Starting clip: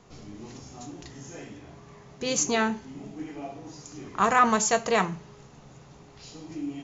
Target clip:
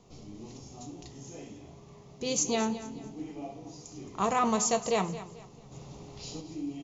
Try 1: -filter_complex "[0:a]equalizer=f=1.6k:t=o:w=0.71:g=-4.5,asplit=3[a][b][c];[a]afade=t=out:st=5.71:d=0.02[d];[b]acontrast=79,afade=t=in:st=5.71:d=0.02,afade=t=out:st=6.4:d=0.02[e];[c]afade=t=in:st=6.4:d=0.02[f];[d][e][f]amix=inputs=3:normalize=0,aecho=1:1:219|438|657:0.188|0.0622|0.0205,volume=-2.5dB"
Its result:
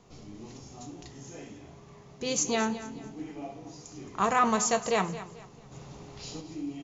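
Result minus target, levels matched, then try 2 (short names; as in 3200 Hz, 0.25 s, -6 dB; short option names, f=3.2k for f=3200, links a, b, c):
2000 Hz band +4.5 dB
-filter_complex "[0:a]equalizer=f=1.6k:t=o:w=0.71:g=-14,asplit=3[a][b][c];[a]afade=t=out:st=5.71:d=0.02[d];[b]acontrast=79,afade=t=in:st=5.71:d=0.02,afade=t=out:st=6.4:d=0.02[e];[c]afade=t=in:st=6.4:d=0.02[f];[d][e][f]amix=inputs=3:normalize=0,aecho=1:1:219|438|657:0.188|0.0622|0.0205,volume=-2.5dB"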